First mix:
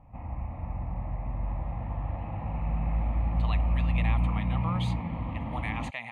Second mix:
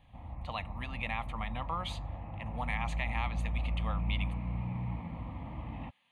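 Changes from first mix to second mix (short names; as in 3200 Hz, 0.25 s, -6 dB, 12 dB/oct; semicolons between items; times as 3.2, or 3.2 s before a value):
speech: entry -2.95 s; background -7.5 dB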